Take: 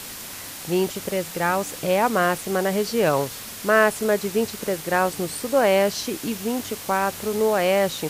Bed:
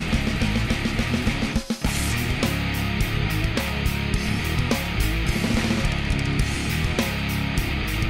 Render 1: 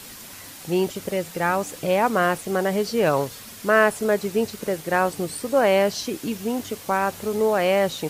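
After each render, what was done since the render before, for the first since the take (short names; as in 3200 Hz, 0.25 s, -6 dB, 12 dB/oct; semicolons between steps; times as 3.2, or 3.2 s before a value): denoiser 6 dB, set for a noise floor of -37 dBFS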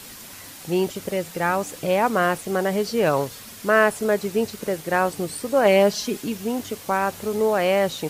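5.65–6.22 comb 4.8 ms, depth 62%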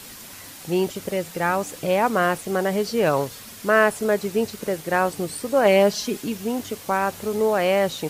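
nothing audible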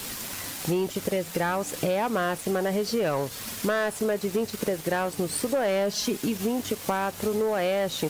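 sample leveller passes 2; compressor 6:1, threshold -24 dBFS, peak gain reduction 13.5 dB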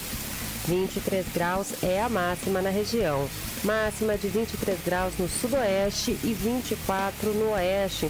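add bed -15 dB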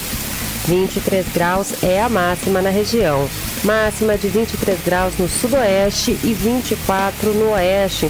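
gain +10 dB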